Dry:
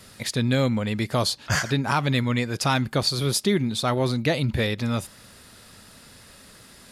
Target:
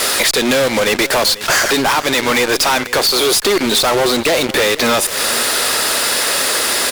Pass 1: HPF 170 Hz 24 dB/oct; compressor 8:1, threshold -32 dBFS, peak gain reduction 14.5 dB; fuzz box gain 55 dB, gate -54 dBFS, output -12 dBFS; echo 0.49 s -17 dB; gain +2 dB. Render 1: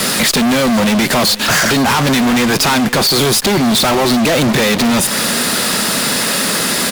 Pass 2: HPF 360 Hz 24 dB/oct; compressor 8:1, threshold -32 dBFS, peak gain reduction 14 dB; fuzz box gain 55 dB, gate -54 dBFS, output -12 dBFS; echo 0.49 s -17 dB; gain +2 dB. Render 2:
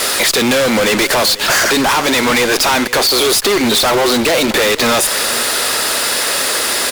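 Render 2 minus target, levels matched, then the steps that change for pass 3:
compressor: peak gain reduction -6.5 dB
change: compressor 8:1, threshold -39.5 dBFS, peak gain reduction 20.5 dB

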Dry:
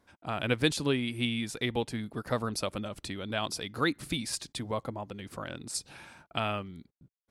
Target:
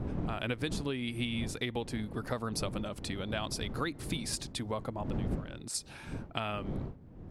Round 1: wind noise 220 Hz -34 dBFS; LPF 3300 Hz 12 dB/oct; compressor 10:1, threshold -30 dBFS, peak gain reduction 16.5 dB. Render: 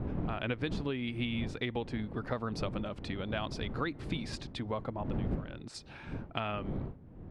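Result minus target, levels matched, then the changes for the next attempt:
4000 Hz band -3.0 dB
remove: LPF 3300 Hz 12 dB/oct

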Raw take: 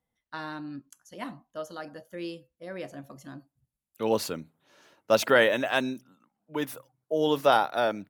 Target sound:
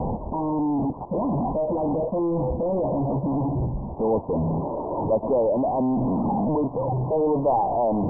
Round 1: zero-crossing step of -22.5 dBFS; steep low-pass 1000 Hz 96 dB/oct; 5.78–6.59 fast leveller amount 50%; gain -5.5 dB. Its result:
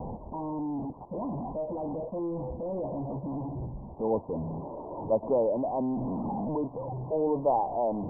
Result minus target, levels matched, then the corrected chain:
zero-crossing step: distortion -6 dB
zero-crossing step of -11.5 dBFS; steep low-pass 1000 Hz 96 dB/oct; 5.78–6.59 fast leveller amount 50%; gain -5.5 dB

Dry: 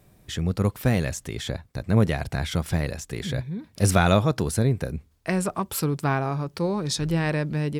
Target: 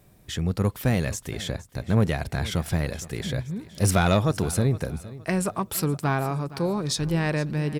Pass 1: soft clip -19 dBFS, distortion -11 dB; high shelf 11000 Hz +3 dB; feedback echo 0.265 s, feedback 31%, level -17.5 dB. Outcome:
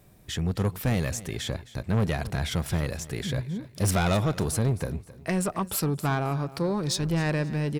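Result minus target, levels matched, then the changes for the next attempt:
echo 0.201 s early; soft clip: distortion +9 dB
change: soft clip -11 dBFS, distortion -21 dB; change: feedback echo 0.466 s, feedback 31%, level -17.5 dB

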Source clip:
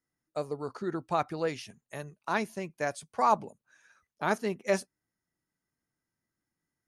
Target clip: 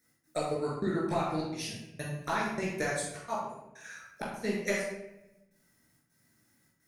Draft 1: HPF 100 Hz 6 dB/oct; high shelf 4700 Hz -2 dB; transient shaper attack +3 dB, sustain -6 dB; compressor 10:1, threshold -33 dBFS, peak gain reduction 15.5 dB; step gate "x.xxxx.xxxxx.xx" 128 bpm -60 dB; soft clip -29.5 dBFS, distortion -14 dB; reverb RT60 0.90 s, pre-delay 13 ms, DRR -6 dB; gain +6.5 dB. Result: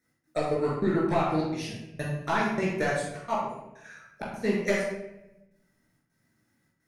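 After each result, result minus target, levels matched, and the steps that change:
8000 Hz band -8.0 dB; compressor: peak gain reduction -7 dB
change: high shelf 4700 Hz +8.5 dB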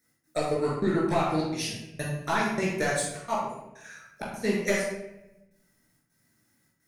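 compressor: peak gain reduction -7 dB
change: compressor 10:1, threshold -40.5 dBFS, peak gain reduction 22.5 dB

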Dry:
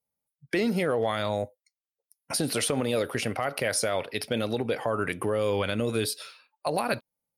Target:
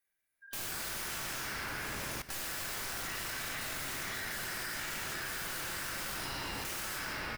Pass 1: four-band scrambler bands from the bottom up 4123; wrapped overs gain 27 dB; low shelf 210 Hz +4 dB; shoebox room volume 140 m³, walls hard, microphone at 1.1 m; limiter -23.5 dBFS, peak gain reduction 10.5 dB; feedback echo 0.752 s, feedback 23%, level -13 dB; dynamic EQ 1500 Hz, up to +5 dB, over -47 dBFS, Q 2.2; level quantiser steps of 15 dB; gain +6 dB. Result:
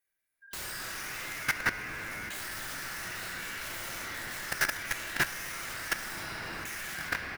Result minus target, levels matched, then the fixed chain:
wrapped overs: distortion -14 dB
four-band scrambler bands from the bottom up 4123; wrapped overs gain 33.5 dB; low shelf 210 Hz +4 dB; shoebox room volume 140 m³, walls hard, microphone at 1.1 m; limiter -23.5 dBFS, peak gain reduction 4.5 dB; feedback echo 0.752 s, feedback 23%, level -13 dB; dynamic EQ 1500 Hz, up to +5 dB, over -47 dBFS, Q 2.2; level quantiser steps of 15 dB; gain +6 dB

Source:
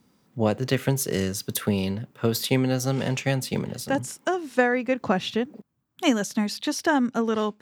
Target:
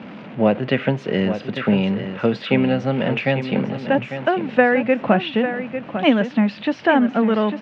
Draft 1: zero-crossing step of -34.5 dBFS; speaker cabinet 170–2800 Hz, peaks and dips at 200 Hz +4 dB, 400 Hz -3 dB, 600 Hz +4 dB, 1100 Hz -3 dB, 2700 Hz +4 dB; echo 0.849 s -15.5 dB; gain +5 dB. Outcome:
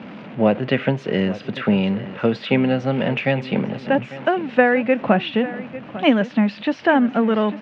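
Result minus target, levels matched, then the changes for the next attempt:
echo-to-direct -6 dB
change: echo 0.849 s -9.5 dB

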